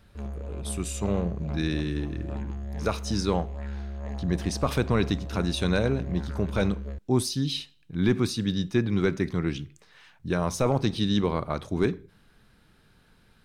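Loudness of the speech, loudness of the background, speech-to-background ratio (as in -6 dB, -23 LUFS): -28.0 LUFS, -36.5 LUFS, 8.5 dB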